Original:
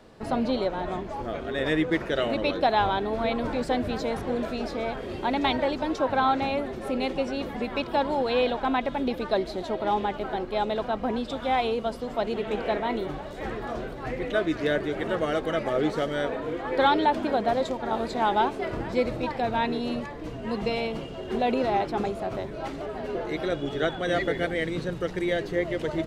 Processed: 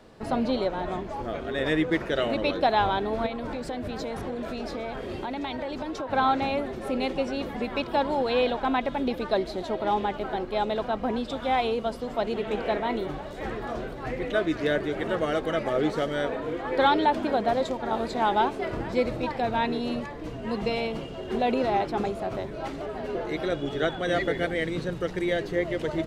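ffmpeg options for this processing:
-filter_complex "[0:a]asettb=1/sr,asplit=3[a][b][c];[a]atrim=end=3.264[d];[b]atrim=start=3.26:end=6.13,asetpts=PTS-STARTPTS,afade=t=in:d=0.004:c=qsin,afade=t=out:st=2.866:d=0.004:c=qsin,acompressor=threshold=-28dB:ratio=10:attack=3.2:release=140:knee=1:detection=peak[e];[c]atrim=start=6.126[f];[d][e]acrossfade=d=0.004:c1=hsin:c2=qsin[g];[g][f]acrossfade=d=0.004:c1=qsin:c2=hsin"

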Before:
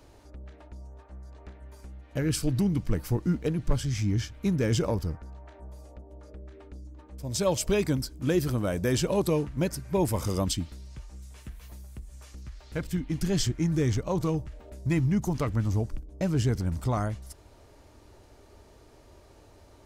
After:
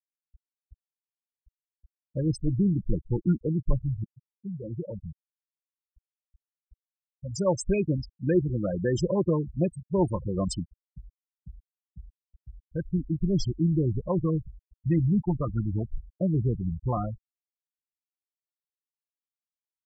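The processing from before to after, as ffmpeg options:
-filter_complex "[0:a]asplit=2[a][b];[a]atrim=end=4.04,asetpts=PTS-STARTPTS,afade=t=out:st=4.036:d=0.004:c=hsin:silence=0.0668344[c];[b]atrim=start=4.04,asetpts=PTS-STARTPTS,afade=t=in:d=2.09:silence=0.0668344[d];[c][d]concat=n=2:v=0:a=1,aecho=1:1:5.7:0.38,afftfilt=real='re*gte(hypot(re,im),0.0891)':imag='im*gte(hypot(re,im),0.0891)':win_size=1024:overlap=0.75"

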